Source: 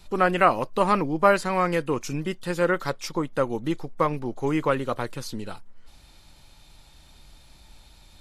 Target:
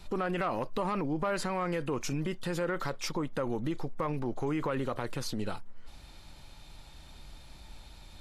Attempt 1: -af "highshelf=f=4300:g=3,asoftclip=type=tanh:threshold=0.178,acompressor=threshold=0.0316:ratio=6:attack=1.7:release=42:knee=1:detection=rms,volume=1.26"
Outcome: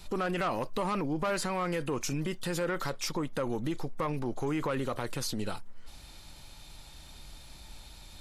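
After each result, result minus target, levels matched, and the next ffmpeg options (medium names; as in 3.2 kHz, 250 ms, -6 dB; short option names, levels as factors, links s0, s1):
saturation: distortion +9 dB; 8 kHz band +4.0 dB
-af "highshelf=f=4300:g=3,asoftclip=type=tanh:threshold=0.376,acompressor=threshold=0.0316:ratio=6:attack=1.7:release=42:knee=1:detection=rms,volume=1.26"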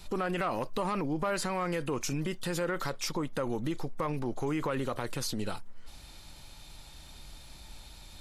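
8 kHz band +4.0 dB
-af "highshelf=f=4300:g=-5.5,asoftclip=type=tanh:threshold=0.376,acompressor=threshold=0.0316:ratio=6:attack=1.7:release=42:knee=1:detection=rms,volume=1.26"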